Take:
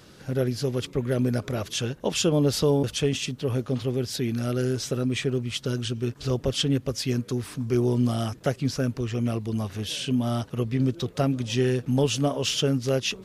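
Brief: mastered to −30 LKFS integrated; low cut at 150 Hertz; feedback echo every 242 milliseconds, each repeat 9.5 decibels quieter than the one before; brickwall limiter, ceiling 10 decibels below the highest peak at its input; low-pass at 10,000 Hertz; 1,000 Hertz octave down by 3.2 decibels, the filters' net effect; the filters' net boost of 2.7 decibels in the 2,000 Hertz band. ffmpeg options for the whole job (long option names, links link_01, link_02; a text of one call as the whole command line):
ffmpeg -i in.wav -af "highpass=150,lowpass=10000,equalizer=frequency=1000:width_type=o:gain=-6.5,equalizer=frequency=2000:width_type=o:gain=5.5,alimiter=limit=-21.5dB:level=0:latency=1,aecho=1:1:242|484|726|968:0.335|0.111|0.0365|0.012,volume=1dB" out.wav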